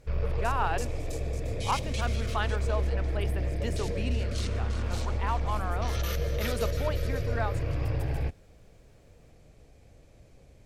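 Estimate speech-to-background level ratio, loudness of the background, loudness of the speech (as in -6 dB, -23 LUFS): -4.0 dB, -32.0 LUFS, -36.0 LUFS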